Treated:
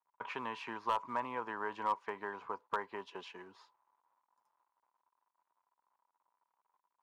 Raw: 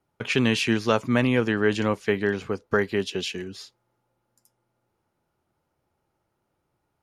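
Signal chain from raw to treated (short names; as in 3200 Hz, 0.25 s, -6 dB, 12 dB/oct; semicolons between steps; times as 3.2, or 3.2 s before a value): compressor 2:1, threshold -24 dBFS, peak gain reduction 5.5 dB; companded quantiser 6-bit; band-pass 980 Hz, Q 11; overloaded stage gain 34 dB; gain +10 dB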